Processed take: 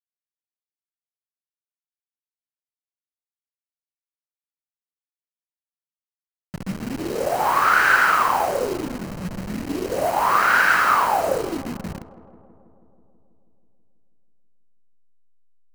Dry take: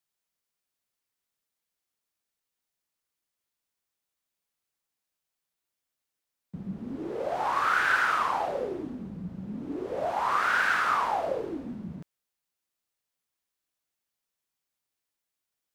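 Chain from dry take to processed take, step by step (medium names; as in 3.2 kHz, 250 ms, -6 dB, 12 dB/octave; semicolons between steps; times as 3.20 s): send-on-delta sampling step -35 dBFS; band-stop 3.5 kHz, Q 8.9; filtered feedback delay 162 ms, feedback 74%, low-pass 1.9 kHz, level -18 dB; trim +8.5 dB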